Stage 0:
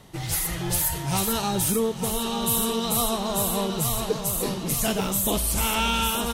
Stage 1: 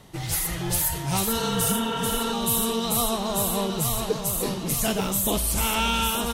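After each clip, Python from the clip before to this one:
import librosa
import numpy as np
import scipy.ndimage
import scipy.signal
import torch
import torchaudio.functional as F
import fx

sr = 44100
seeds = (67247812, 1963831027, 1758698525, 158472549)

y = fx.spec_repair(x, sr, seeds[0], start_s=1.39, length_s=0.91, low_hz=250.0, high_hz=3800.0, source='before')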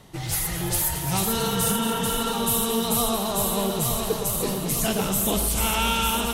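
y = fx.echo_alternate(x, sr, ms=111, hz=1600.0, feedback_pct=81, wet_db=-8)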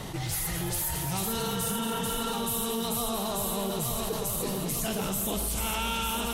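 y = fx.env_flatten(x, sr, amount_pct=70)
y = y * librosa.db_to_amplitude(-8.5)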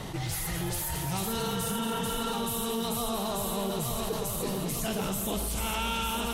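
y = fx.high_shelf(x, sr, hz=6700.0, db=-4.5)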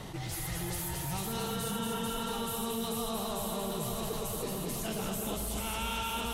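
y = x + 10.0 ** (-5.0 / 20.0) * np.pad(x, (int(231 * sr / 1000.0), 0))[:len(x)]
y = y * librosa.db_to_amplitude(-5.0)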